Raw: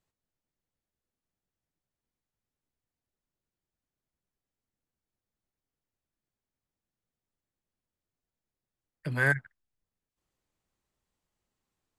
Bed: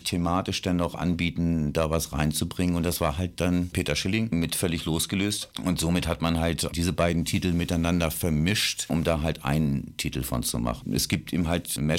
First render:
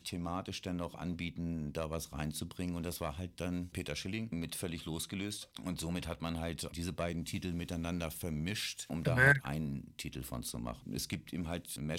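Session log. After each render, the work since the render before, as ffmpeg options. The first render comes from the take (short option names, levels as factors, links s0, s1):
-filter_complex "[1:a]volume=0.211[s0];[0:a][s0]amix=inputs=2:normalize=0"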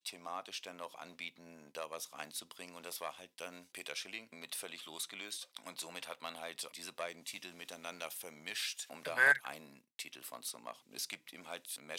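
-af "highpass=680,agate=range=0.0224:threshold=0.00158:ratio=3:detection=peak"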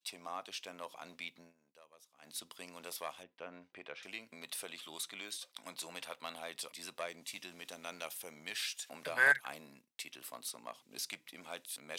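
-filter_complex "[0:a]asettb=1/sr,asplit=3[s0][s1][s2];[s0]atrim=end=3.234[s3];[s1]atrim=start=3.23:end=4.03,asetpts=PTS-STARTPTS,afade=t=in:d=0.004:c=qsin,afade=t=out:st=0.796:d=0.004:c=qsin,lowpass=1900[s4];[s2]atrim=start=4.026[s5];[s3][s4]acrossfade=d=0.004:c1=hsin:c2=qsin[s6];[s6][s5]acrossfade=d=0.004:c1=qsin:c2=hsin,asplit=3[s7][s8][s9];[s7]atrim=end=1.53,asetpts=PTS-STARTPTS,afade=t=out:st=1.4:d=0.13:silence=0.11885[s10];[s8]atrim=start=1.53:end=2.21,asetpts=PTS-STARTPTS,volume=0.119[s11];[s9]atrim=start=2.21,asetpts=PTS-STARTPTS,afade=t=in:d=0.13:silence=0.11885[s12];[s10][s11][s12]concat=n=3:v=0:a=1"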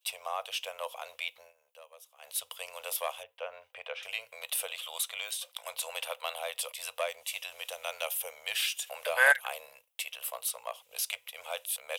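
-af "firequalizer=gain_entry='entry(100,0);entry(160,-27);entry(340,-29);entry(480,10);entry(1800,3);entry(2900,13);entry(4300,2);entry(12000,14)':delay=0.05:min_phase=1"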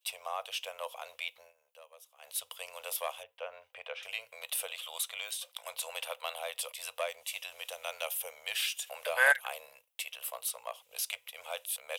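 -af "volume=0.794"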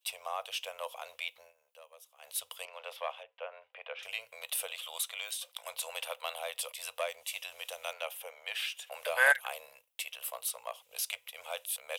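-filter_complex "[0:a]asettb=1/sr,asplit=3[s0][s1][s2];[s0]atrim=end=2.654[s3];[s1]atrim=start=2.65:end=3.99,asetpts=PTS-STARTPTS,afade=t=in:d=0.004:c=qsin,afade=t=out:st=1.336:d=0.004:c=qsin,acrossover=split=320 3900:gain=0.2 1 0.0708[s4][s5][s6];[s4][s5][s6]amix=inputs=3:normalize=0[s7];[s2]atrim=start=3.986[s8];[s3][s7]acrossfade=d=0.004:c1=hsin:c2=qsin[s9];[s9][s8]acrossfade=d=0.004:c1=qsin:c2=hsin,asettb=1/sr,asplit=3[s10][s11][s12];[s10]atrim=end=5.044[s13];[s11]atrim=start=5.04:end=5.49,asetpts=PTS-STARTPTS,afade=t=in:d=0.004:c=qsin,afade=t=out:st=0.446:d=0.004:c=qsin,highpass=f=290:p=1[s14];[s12]atrim=start=5.486[s15];[s13][s14]acrossfade=d=0.004:c1=hsin:c2=qsin[s16];[s16][s15]acrossfade=d=0.004:c1=qsin:c2=hsin,asettb=1/sr,asplit=3[s17][s18][s19];[s17]atrim=end=7.934[s20];[s18]atrim=start=7.93:end=8.92,asetpts=PTS-STARTPTS,afade=t=in:d=0.004:c=qsin,afade=t=out:st=0.986:d=0.004:c=qsin,bass=f=250:g=-11,treble=f=4000:g=-10[s21];[s19]atrim=start=8.916[s22];[s20][s21]acrossfade=d=0.004:c1=hsin:c2=qsin[s23];[s23][s22]acrossfade=d=0.004:c1=qsin:c2=hsin"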